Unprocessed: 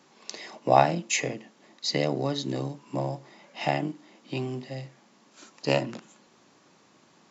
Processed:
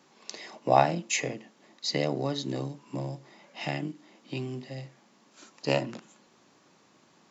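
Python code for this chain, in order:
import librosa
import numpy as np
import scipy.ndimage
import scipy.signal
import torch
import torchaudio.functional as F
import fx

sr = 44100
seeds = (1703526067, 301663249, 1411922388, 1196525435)

y = fx.dynamic_eq(x, sr, hz=770.0, q=0.97, threshold_db=-42.0, ratio=4.0, max_db=-8, at=(2.63, 4.78))
y = y * 10.0 ** (-2.0 / 20.0)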